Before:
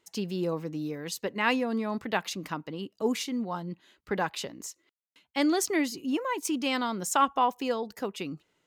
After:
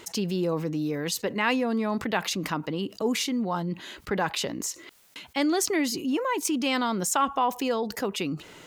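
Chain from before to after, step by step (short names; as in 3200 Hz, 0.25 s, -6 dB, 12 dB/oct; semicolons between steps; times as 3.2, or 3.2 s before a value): fast leveller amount 50%; gain -1.5 dB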